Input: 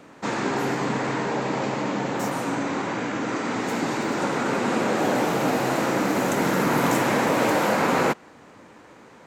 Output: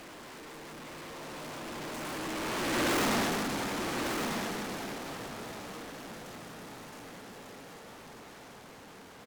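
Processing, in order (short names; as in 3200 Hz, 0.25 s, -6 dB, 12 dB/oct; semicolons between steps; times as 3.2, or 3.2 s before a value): infinite clipping; Doppler pass-by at 2.99, 41 m/s, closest 2.6 m; high shelf 11000 Hz -6 dB; in parallel at +1 dB: compressor, threshold -48 dBFS, peak gain reduction 19.5 dB; on the sum: hard clip -32.5 dBFS, distortion -8 dB; on a send: echo 1.197 s -6.5 dB; on the sum: gain +4.5 dB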